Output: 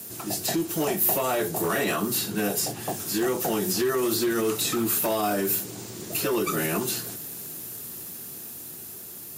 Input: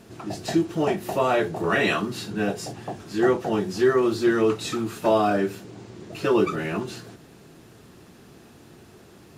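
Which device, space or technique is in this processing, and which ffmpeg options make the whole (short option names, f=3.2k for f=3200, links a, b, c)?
FM broadcast chain: -filter_complex "[0:a]highpass=76,dynaudnorm=f=360:g=11:m=3dB,acrossover=split=130|1600|3900[a][b][c][d];[a]acompressor=threshold=-44dB:ratio=4[e];[b]acompressor=threshold=-17dB:ratio=4[f];[c]acompressor=threshold=-39dB:ratio=4[g];[d]acompressor=threshold=-47dB:ratio=4[h];[e][f][g][h]amix=inputs=4:normalize=0,aemphasis=mode=production:type=50fm,alimiter=limit=-16.5dB:level=0:latency=1:release=61,asoftclip=type=hard:threshold=-19.5dB,lowpass=f=15k:w=0.5412,lowpass=f=15k:w=1.3066,aemphasis=mode=production:type=50fm"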